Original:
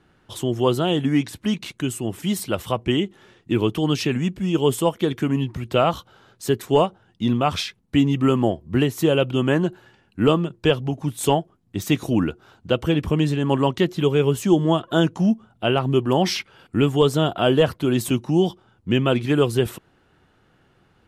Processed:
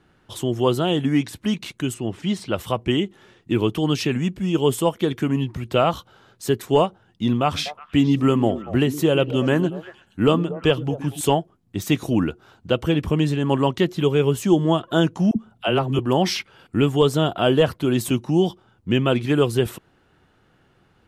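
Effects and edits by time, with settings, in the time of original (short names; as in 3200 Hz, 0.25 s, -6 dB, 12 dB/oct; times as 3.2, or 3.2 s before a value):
1.94–2.56 LPF 5000 Hz
7.42–11.21 delay with a stepping band-pass 0.118 s, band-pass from 230 Hz, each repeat 1.4 oct, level -8.5 dB
15.31–15.99 dispersion lows, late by 53 ms, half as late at 430 Hz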